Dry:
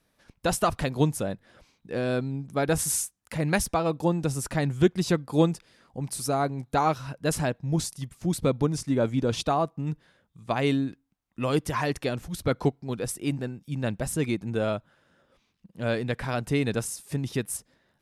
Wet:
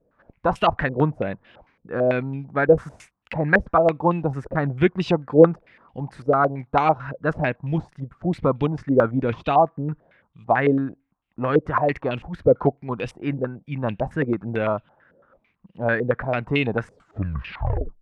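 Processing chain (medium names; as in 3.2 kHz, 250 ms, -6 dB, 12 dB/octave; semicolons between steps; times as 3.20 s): tape stop on the ending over 1.18 s; step-sequenced low-pass 9 Hz 510–2800 Hz; trim +2 dB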